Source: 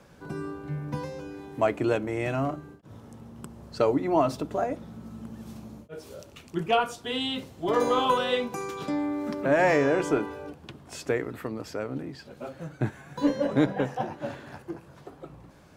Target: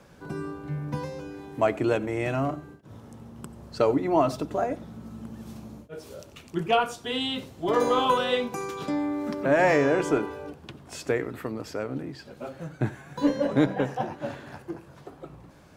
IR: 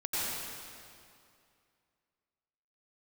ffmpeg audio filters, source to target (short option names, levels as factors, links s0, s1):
-filter_complex "[0:a]asplit=2[s0][s1];[1:a]atrim=start_sample=2205,atrim=end_sample=4410[s2];[s1][s2]afir=irnorm=-1:irlink=0,volume=0.158[s3];[s0][s3]amix=inputs=2:normalize=0"